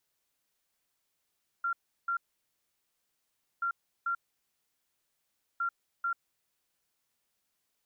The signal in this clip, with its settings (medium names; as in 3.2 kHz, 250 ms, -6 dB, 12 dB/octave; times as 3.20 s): beep pattern sine 1.38 kHz, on 0.09 s, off 0.35 s, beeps 2, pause 1.45 s, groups 3, -28 dBFS